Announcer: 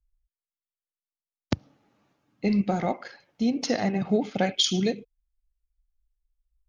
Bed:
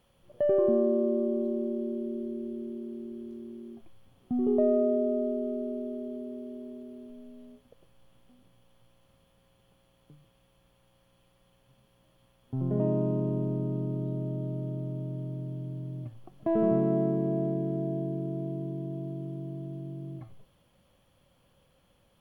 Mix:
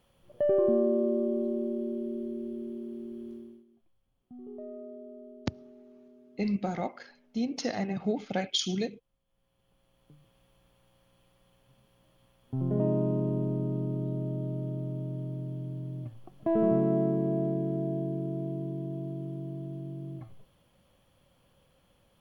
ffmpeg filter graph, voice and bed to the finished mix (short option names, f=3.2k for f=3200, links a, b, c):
-filter_complex "[0:a]adelay=3950,volume=-6dB[a];[1:a]volume=18dB,afade=t=out:st=3.32:d=0.33:silence=0.125893,afade=t=in:st=9.25:d=1.13:silence=0.11885[b];[a][b]amix=inputs=2:normalize=0"